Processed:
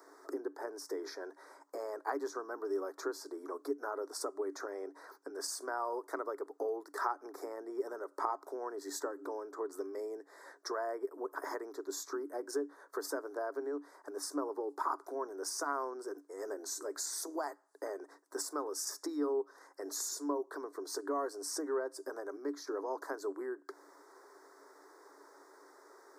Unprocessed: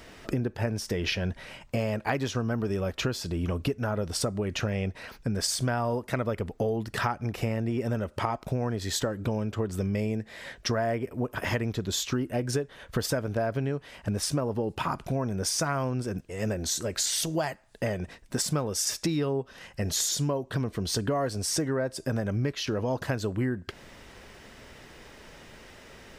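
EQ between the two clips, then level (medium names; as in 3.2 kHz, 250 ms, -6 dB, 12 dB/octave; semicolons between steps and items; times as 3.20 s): rippled Chebyshev high-pass 280 Hz, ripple 9 dB; Butterworth band-stop 2.8 kHz, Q 0.81; treble shelf 11 kHz +3.5 dB; -1.5 dB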